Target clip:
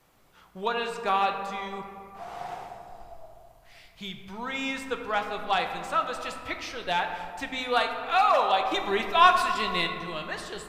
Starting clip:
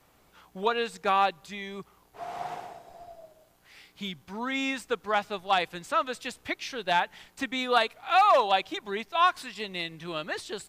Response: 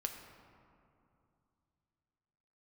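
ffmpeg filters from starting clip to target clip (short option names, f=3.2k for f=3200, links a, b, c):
-filter_complex "[0:a]asettb=1/sr,asplit=3[a][b][c];[a]atrim=end=8.714[d];[b]atrim=start=8.71:end=9.87,asetpts=PTS-STARTPTS,afade=t=in:d=0.004:c=qsin,afade=t=out:st=1.156:d=0.004:c=qsin,acontrast=80[e];[c]atrim=start=9.866[f];[d][e]acrossfade=d=0.004:c1=hsin:c2=qsin[g];[g][f]acrossfade=d=0.004:c1=qsin:c2=hsin[h];[1:a]atrim=start_sample=2205[i];[h][i]afir=irnorm=-1:irlink=0,asubboost=boost=5:cutoff=85"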